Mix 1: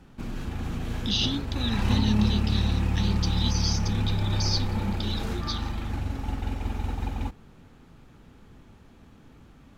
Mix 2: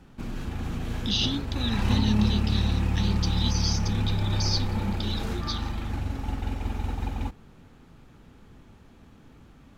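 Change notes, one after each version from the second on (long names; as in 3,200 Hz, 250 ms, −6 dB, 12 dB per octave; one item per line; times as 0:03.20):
nothing changed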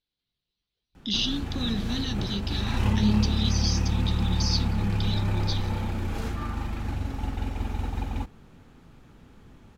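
background: entry +0.95 s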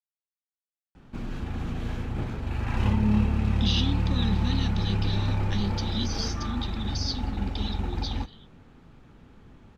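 speech: entry +2.55 s
master: add high-shelf EQ 7,100 Hz −12 dB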